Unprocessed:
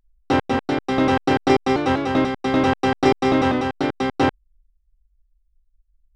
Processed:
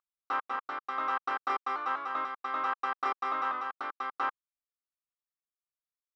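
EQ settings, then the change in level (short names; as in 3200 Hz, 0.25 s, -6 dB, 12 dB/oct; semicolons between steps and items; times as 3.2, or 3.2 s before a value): band-pass 1200 Hz, Q 6.7; tilt +2.5 dB/oct; +1.5 dB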